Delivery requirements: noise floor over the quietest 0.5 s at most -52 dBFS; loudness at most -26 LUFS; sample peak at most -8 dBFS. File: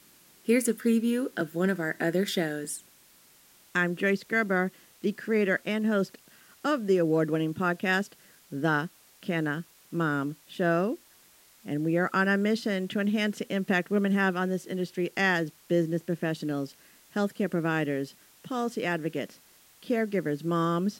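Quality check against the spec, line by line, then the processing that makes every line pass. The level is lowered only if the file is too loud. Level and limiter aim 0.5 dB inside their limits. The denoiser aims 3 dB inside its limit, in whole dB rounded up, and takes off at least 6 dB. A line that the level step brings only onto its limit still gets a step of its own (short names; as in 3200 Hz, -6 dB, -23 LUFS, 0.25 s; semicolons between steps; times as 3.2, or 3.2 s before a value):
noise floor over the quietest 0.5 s -58 dBFS: OK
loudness -28.5 LUFS: OK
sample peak -12.5 dBFS: OK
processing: none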